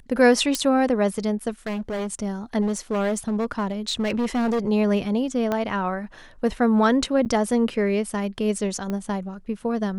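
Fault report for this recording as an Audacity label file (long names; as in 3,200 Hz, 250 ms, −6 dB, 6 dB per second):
0.550000	0.550000	click −8 dBFS
1.660000	2.070000	clipping −25 dBFS
2.610000	4.690000	clipping −19.5 dBFS
5.520000	5.520000	click −12 dBFS
7.250000	7.260000	drop-out 9.1 ms
8.900000	8.900000	click −17 dBFS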